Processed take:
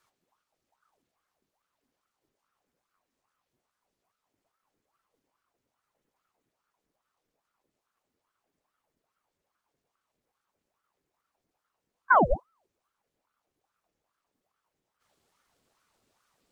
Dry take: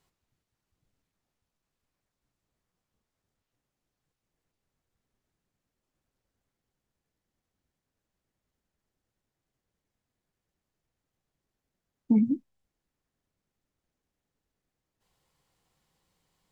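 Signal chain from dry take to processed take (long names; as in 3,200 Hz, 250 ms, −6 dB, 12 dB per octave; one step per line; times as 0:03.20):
spectral magnitudes quantised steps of 15 dB
pitch vibrato 5.5 Hz 11 cents
ring modulator whose carrier an LFO sweeps 790 Hz, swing 70%, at 2.4 Hz
level +5 dB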